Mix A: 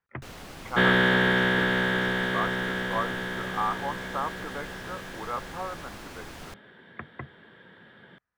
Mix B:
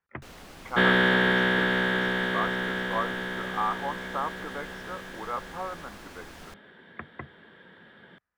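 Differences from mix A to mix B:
first sound -3.5 dB; master: add bell 120 Hz -7.5 dB 0.34 oct

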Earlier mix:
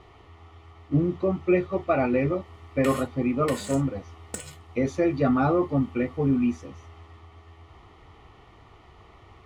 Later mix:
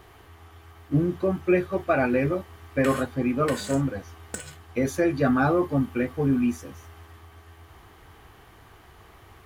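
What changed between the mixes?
speech: remove air absorption 110 m; master: remove Butterworth band-stop 1600 Hz, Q 5

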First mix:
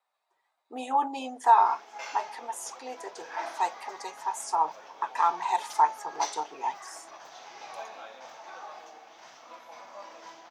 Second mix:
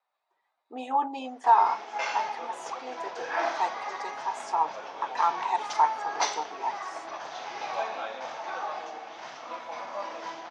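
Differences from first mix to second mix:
background +10.0 dB; master: add air absorption 110 m

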